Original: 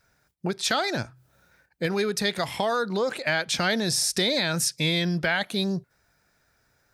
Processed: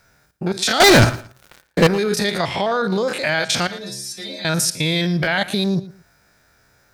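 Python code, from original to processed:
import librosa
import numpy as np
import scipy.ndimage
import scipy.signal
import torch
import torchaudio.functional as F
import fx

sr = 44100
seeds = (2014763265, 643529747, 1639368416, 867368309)

p1 = fx.spec_steps(x, sr, hold_ms=50)
p2 = fx.over_compress(p1, sr, threshold_db=-29.0, ratio=-0.5)
p3 = p1 + (p2 * librosa.db_to_amplitude(0.0))
p4 = fx.leveller(p3, sr, passes=5, at=(0.8, 1.87))
p5 = fx.lowpass(p4, sr, hz=4700.0, slope=12, at=(2.38, 2.84))
p6 = fx.stiff_resonator(p5, sr, f0_hz=64.0, decay_s=0.76, stiffness=0.008, at=(3.67, 4.45))
p7 = p6 + fx.echo_feedback(p6, sr, ms=114, feedback_pct=24, wet_db=-17.5, dry=0)
y = p7 * librosa.db_to_amplitude(3.0)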